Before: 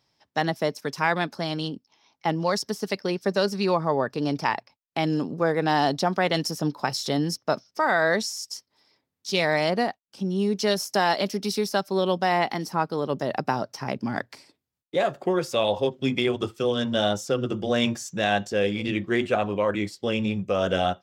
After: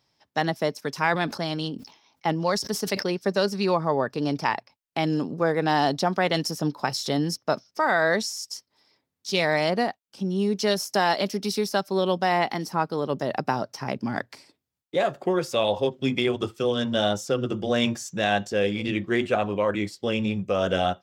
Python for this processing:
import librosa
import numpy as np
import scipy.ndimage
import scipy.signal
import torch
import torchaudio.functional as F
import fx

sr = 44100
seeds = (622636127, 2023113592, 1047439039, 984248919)

y = fx.sustainer(x, sr, db_per_s=110.0, at=(0.91, 3.06))